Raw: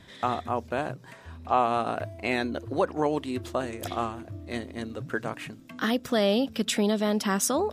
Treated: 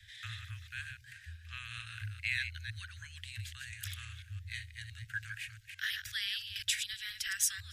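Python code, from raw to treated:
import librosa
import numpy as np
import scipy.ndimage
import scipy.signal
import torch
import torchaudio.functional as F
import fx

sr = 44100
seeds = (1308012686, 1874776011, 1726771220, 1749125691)

y = fx.reverse_delay(x, sr, ms=169, wet_db=-7.0)
y = scipy.signal.sosfilt(scipy.signal.cheby1(5, 1.0, [110.0, 1600.0], 'bandstop', fs=sr, output='sos'), y)
y = y * librosa.db_to_amplitude(-2.5)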